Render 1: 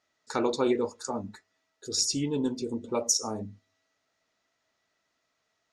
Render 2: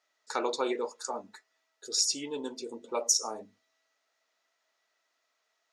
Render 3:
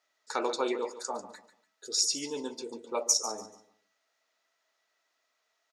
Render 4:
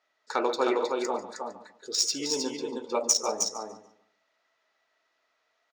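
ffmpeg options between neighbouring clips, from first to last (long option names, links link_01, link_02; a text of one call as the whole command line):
ffmpeg -i in.wav -af "highpass=500" out.wav
ffmpeg -i in.wav -af "aecho=1:1:144|288|432:0.211|0.055|0.0143" out.wav
ffmpeg -i in.wav -af "aecho=1:1:313:0.631,adynamicsmooth=sensitivity=2:basefreq=4700,volume=4dB" out.wav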